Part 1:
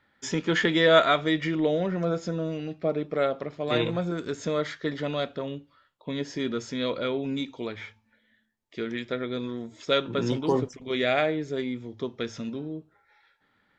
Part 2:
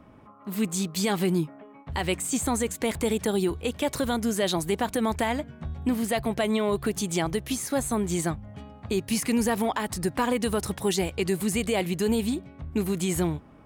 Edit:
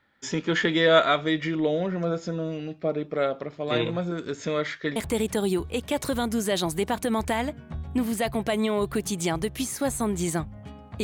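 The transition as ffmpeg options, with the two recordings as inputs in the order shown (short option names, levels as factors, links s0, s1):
-filter_complex "[0:a]asettb=1/sr,asplit=3[s0][s1][s2];[s0]atrim=end=4.394[s3];[s1]atrim=start=4.39:end=4.96,asetpts=PTS-STARTPTS,afade=t=in:d=0.004:c=qsin,afade=t=out:st=0.566:d=0.004:c=qsin,equalizer=f=2200:w=1.6:g=6[s4];[s2]atrim=start=4.956[s5];[s3][s4]acrossfade=d=0.004:c1=hsin:c2=qsin[s6];[s6][s5]acrossfade=d=0.004:c1=qsin:c2=hsin,apad=whole_dur=11.03,atrim=end=11.03,atrim=end=4.962[s7];[1:a]atrim=start=2.868:end=8.94[s8];[s7][s8]acrossfade=d=0.004:c1=hsin:c2=hsin"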